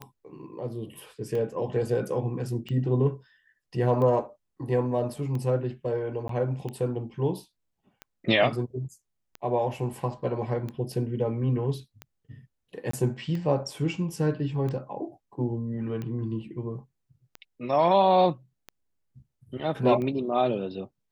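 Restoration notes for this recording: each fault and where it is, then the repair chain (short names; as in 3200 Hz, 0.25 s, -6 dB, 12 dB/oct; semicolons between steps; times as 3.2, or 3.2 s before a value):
tick 45 rpm -23 dBFS
6.28–6.29 gap 13 ms
12.91–12.93 gap 24 ms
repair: de-click; interpolate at 6.28, 13 ms; interpolate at 12.91, 24 ms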